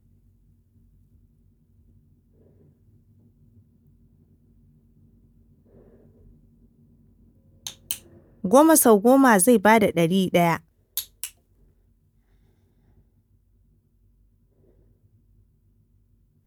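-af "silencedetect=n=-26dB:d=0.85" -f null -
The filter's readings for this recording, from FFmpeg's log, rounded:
silence_start: 0.00
silence_end: 7.67 | silence_duration: 7.67
silence_start: 11.25
silence_end: 16.46 | silence_duration: 5.21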